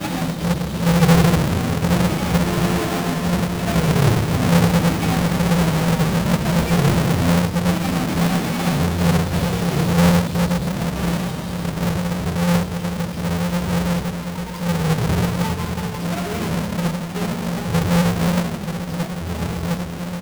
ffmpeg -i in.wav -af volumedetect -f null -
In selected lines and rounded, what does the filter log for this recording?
mean_volume: -19.0 dB
max_volume: -8.3 dB